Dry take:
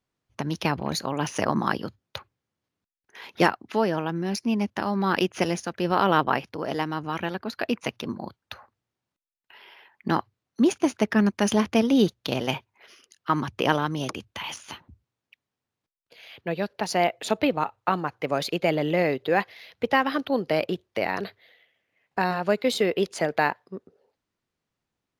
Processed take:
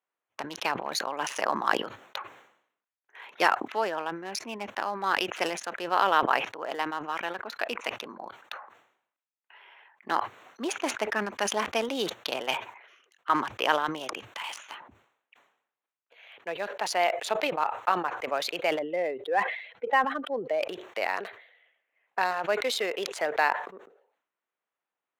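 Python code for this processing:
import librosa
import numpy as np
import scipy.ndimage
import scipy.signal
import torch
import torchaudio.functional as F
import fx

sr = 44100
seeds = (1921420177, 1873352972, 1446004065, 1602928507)

y = fx.spec_expand(x, sr, power=1.6, at=(18.79, 20.62))
y = fx.wiener(y, sr, points=9)
y = scipy.signal.sosfilt(scipy.signal.butter(2, 660.0, 'highpass', fs=sr, output='sos'), y)
y = fx.sustainer(y, sr, db_per_s=88.0)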